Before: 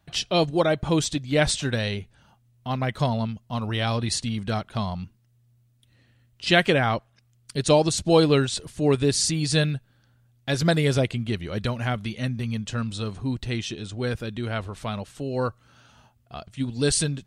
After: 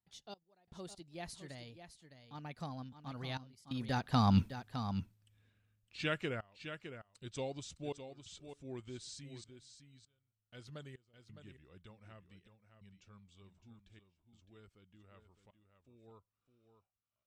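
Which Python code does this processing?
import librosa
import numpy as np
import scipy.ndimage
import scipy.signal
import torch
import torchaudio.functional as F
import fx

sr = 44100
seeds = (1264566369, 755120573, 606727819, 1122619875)

p1 = fx.doppler_pass(x, sr, speed_mps=45, closest_m=3.4, pass_at_s=4.4)
p2 = fx.step_gate(p1, sr, bpm=89, pattern='xx..xxxxx', floor_db=-24.0, edge_ms=4.5)
p3 = p2 + fx.echo_single(p2, sr, ms=610, db=-10.0, dry=0)
y = F.gain(torch.from_numpy(p3), 8.5).numpy()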